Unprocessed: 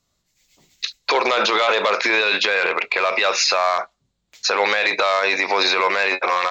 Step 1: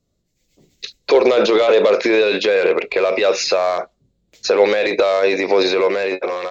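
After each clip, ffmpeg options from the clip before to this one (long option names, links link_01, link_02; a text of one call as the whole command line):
ffmpeg -i in.wav -af "dynaudnorm=framelen=140:gausssize=11:maxgain=6dB,lowshelf=frequency=680:width_type=q:width=1.5:gain=11.5,volume=-7.5dB" out.wav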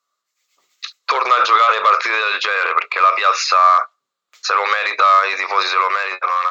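ffmpeg -i in.wav -af "highpass=frequency=1200:width_type=q:width=8.6" out.wav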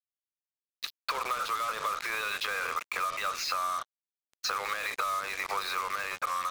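ffmpeg -i in.wav -af "acompressor=threshold=-22dB:ratio=12,acrusher=bits=4:mix=0:aa=0.5,volume=-6.5dB" out.wav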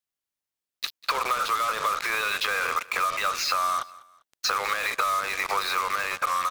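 ffmpeg -i in.wav -af "aecho=1:1:198|396:0.0891|0.0294,volume=6dB" out.wav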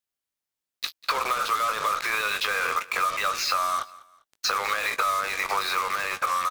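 ffmpeg -i in.wav -filter_complex "[0:a]asplit=2[link_01][link_02];[link_02]adelay=19,volume=-10.5dB[link_03];[link_01][link_03]amix=inputs=2:normalize=0" out.wav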